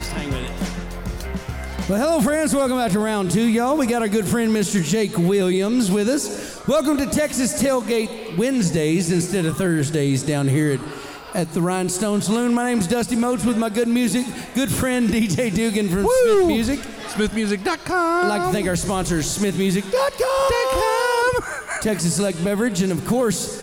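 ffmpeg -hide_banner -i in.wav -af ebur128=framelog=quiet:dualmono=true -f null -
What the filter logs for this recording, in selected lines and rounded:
Integrated loudness:
  I:         -17.3 LUFS
  Threshold: -27.4 LUFS
Loudness range:
  LRA:         1.9 LU
  Threshold: -37.2 LUFS
  LRA low:   -18.1 LUFS
  LRA high:  -16.2 LUFS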